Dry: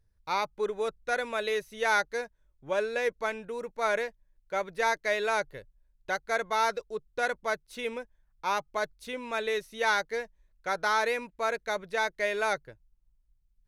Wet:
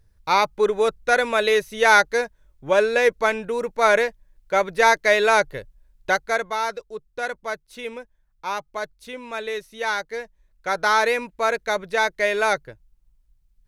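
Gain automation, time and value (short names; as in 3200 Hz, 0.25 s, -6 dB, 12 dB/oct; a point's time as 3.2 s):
6.11 s +11 dB
6.6 s +1.5 dB
10.07 s +1.5 dB
10.9 s +8 dB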